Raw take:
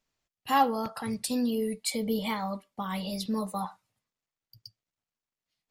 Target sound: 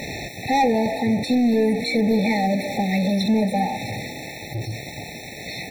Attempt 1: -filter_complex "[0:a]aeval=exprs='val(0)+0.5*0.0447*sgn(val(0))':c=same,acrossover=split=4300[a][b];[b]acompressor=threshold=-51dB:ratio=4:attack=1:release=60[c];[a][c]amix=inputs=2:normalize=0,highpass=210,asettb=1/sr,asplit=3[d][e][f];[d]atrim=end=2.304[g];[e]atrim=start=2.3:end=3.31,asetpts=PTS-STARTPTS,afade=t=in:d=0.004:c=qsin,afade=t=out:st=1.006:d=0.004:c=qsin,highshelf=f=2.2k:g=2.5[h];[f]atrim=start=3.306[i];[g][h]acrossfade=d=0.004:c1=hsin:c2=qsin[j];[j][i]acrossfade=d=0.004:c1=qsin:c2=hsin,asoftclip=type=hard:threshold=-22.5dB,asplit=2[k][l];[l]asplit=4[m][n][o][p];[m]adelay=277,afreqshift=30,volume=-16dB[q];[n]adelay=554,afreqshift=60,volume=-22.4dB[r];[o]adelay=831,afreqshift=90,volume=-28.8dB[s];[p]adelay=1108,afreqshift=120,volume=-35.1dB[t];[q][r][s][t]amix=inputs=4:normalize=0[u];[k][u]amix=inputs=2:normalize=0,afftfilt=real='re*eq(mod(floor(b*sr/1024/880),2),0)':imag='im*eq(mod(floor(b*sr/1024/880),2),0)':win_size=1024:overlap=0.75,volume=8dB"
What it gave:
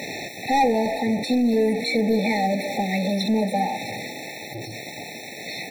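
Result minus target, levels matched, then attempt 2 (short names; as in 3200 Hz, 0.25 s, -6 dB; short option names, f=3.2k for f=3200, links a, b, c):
125 Hz band -3.5 dB
-filter_complex "[0:a]aeval=exprs='val(0)+0.5*0.0447*sgn(val(0))':c=same,acrossover=split=4300[a][b];[b]acompressor=threshold=-51dB:ratio=4:attack=1:release=60[c];[a][c]amix=inputs=2:normalize=0,highpass=72,asettb=1/sr,asplit=3[d][e][f];[d]atrim=end=2.304[g];[e]atrim=start=2.3:end=3.31,asetpts=PTS-STARTPTS,afade=t=in:d=0.004:c=qsin,afade=t=out:st=1.006:d=0.004:c=qsin,highshelf=f=2.2k:g=2.5[h];[f]atrim=start=3.306[i];[g][h]acrossfade=d=0.004:c1=hsin:c2=qsin[j];[j][i]acrossfade=d=0.004:c1=qsin:c2=hsin,asoftclip=type=hard:threshold=-22.5dB,asplit=2[k][l];[l]asplit=4[m][n][o][p];[m]adelay=277,afreqshift=30,volume=-16dB[q];[n]adelay=554,afreqshift=60,volume=-22.4dB[r];[o]adelay=831,afreqshift=90,volume=-28.8dB[s];[p]adelay=1108,afreqshift=120,volume=-35.1dB[t];[q][r][s][t]amix=inputs=4:normalize=0[u];[k][u]amix=inputs=2:normalize=0,afftfilt=real='re*eq(mod(floor(b*sr/1024/880),2),0)':imag='im*eq(mod(floor(b*sr/1024/880),2),0)':win_size=1024:overlap=0.75,volume=8dB"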